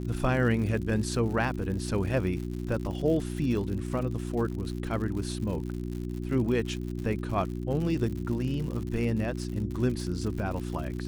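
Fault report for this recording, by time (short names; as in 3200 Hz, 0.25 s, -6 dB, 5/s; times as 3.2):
crackle 100/s -35 dBFS
hum 60 Hz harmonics 6 -34 dBFS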